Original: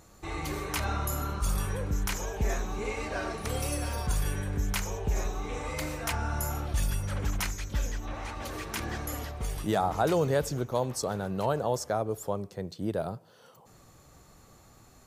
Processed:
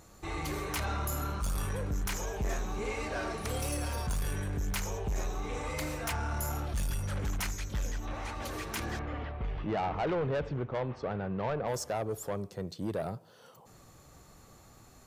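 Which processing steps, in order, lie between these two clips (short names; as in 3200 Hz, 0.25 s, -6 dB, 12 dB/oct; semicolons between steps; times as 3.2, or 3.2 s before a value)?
8.99–11.68 LPF 2900 Hz 24 dB/oct; soft clip -27 dBFS, distortion -12 dB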